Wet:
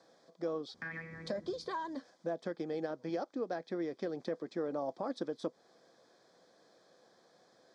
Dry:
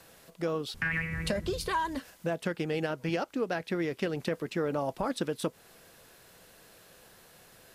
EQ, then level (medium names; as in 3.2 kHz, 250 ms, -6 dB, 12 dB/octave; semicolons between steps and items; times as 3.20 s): Butterworth band-stop 2.8 kHz, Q 4.1; cabinet simulation 390–4900 Hz, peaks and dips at 420 Hz -6 dB, 610 Hz -3 dB, 920 Hz -6 dB, 1.4 kHz -6 dB, 2.2 kHz -7 dB, 3.9 kHz -4 dB; peaking EQ 2.4 kHz -12 dB 2.3 oct; +2.5 dB